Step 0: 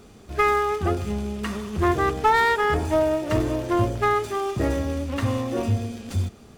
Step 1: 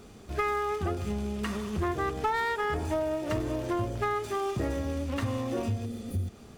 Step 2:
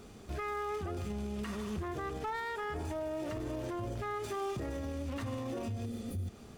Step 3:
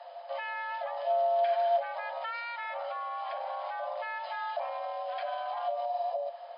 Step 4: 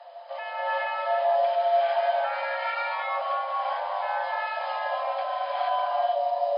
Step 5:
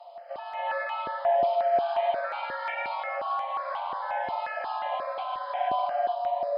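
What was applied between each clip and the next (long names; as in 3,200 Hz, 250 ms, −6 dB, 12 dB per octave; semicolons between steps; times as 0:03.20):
healed spectral selection 0:05.88–0:06.25, 580–9,000 Hz after; downward compressor 3 to 1, threshold −27 dBFS, peak gain reduction 9.5 dB; level −1.5 dB
brickwall limiter −28.5 dBFS, peak gain reduction 10.5 dB; level −2 dB
frequency shifter +480 Hz; hollow resonant body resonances 690/3,100 Hz, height 14 dB, ringing for 85 ms; brick-wall band-pass 490–5,100 Hz
reverb whose tail is shaped and stops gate 490 ms rising, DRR −7 dB
step-sequenced phaser 5.6 Hz 450–1,800 Hz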